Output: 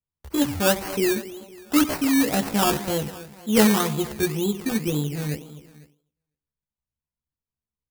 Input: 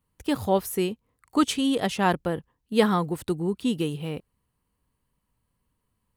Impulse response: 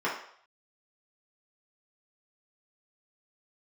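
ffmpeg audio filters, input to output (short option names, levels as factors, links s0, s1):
-filter_complex "[0:a]aecho=1:1:196|392|588|784:0.15|0.0703|0.0331|0.0155,agate=range=0.0708:threshold=0.00224:ratio=16:detection=peak,lowshelf=f=250:g=6.5,asplit=2[s0][s1];[s1]adelay=14,volume=0.794[s2];[s0][s2]amix=inputs=2:normalize=0,asplit=2[s3][s4];[1:a]atrim=start_sample=2205,atrim=end_sample=4410,adelay=53[s5];[s4][s5]afir=irnorm=-1:irlink=0,volume=0.0631[s6];[s3][s6]amix=inputs=2:normalize=0,acrusher=samples=17:mix=1:aa=0.000001:lfo=1:lforange=10.2:lforate=2.5,crystalizer=i=1:c=0,atempo=0.78,volume=0.75"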